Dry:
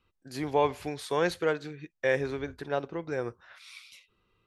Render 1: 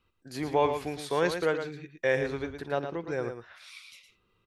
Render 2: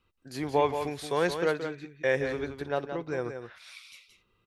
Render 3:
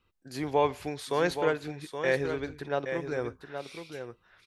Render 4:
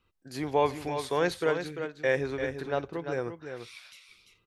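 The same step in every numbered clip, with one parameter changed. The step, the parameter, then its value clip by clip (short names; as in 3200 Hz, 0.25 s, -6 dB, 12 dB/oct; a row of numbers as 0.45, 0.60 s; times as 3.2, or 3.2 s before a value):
echo, time: 0.113, 0.174, 0.822, 0.344 s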